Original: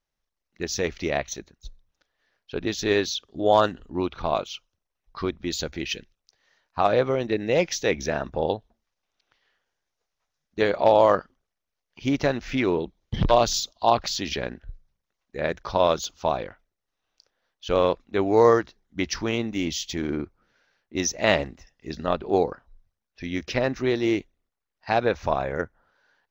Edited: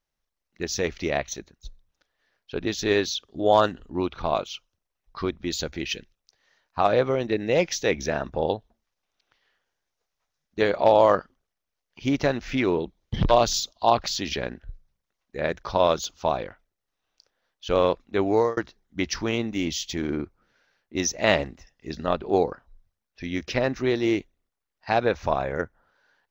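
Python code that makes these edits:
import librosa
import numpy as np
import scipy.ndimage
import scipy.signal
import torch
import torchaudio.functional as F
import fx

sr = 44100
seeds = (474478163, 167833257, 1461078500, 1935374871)

y = fx.edit(x, sr, fx.fade_out_span(start_s=18.31, length_s=0.26), tone=tone)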